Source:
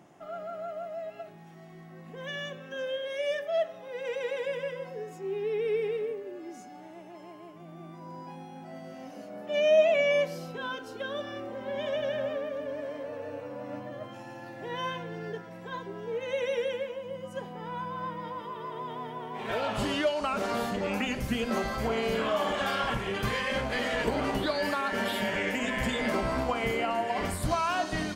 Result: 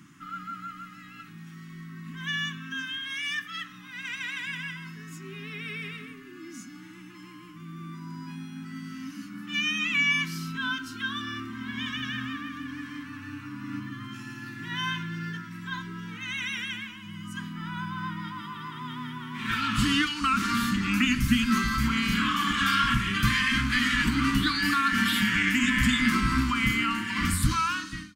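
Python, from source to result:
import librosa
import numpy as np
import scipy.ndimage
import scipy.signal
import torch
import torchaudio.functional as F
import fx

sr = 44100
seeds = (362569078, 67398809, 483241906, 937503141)

y = fx.fade_out_tail(x, sr, length_s=0.74)
y = scipy.signal.sosfilt(scipy.signal.ellip(3, 1.0, 80, [280.0, 1200.0], 'bandstop', fs=sr, output='sos'), y)
y = F.gain(torch.from_numpy(y), 8.5).numpy()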